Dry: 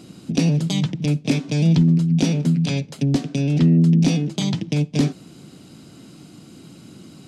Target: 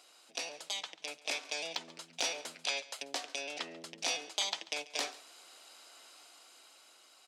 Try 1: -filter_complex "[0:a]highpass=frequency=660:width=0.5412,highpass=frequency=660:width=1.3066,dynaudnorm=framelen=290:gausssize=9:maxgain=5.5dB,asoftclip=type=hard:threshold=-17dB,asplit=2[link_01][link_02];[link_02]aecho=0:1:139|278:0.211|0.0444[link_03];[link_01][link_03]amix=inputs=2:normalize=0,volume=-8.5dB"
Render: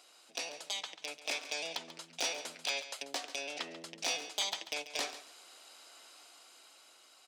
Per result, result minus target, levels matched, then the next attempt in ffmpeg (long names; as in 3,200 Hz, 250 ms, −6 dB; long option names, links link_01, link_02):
hard clipping: distortion +16 dB; echo-to-direct +6.5 dB
-filter_complex "[0:a]highpass=frequency=660:width=0.5412,highpass=frequency=660:width=1.3066,dynaudnorm=framelen=290:gausssize=9:maxgain=5.5dB,asoftclip=type=hard:threshold=-10dB,asplit=2[link_01][link_02];[link_02]aecho=0:1:139|278:0.211|0.0444[link_03];[link_01][link_03]amix=inputs=2:normalize=0,volume=-8.5dB"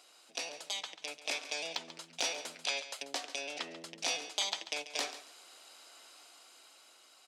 echo-to-direct +6.5 dB
-filter_complex "[0:a]highpass=frequency=660:width=0.5412,highpass=frequency=660:width=1.3066,dynaudnorm=framelen=290:gausssize=9:maxgain=5.5dB,asoftclip=type=hard:threshold=-10dB,asplit=2[link_01][link_02];[link_02]aecho=0:1:139|278:0.1|0.021[link_03];[link_01][link_03]amix=inputs=2:normalize=0,volume=-8.5dB"